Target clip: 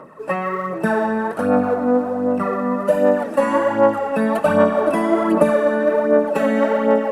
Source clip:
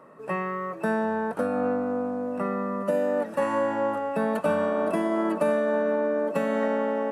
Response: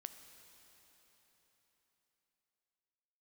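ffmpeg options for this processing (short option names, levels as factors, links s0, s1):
-filter_complex "[0:a]aphaser=in_gain=1:out_gain=1:delay=4.1:decay=0.56:speed=1.3:type=sinusoidal,asplit=2[s0][s1];[1:a]atrim=start_sample=2205[s2];[s1][s2]afir=irnorm=-1:irlink=0,volume=1.88[s3];[s0][s3]amix=inputs=2:normalize=0"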